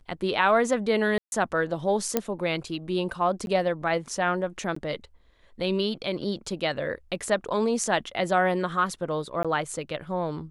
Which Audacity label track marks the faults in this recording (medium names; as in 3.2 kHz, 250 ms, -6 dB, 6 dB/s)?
1.180000	1.320000	dropout 141 ms
2.170000	2.170000	pop -8 dBFS
3.460000	3.470000	dropout 11 ms
4.750000	4.760000	dropout 14 ms
9.430000	9.450000	dropout 16 ms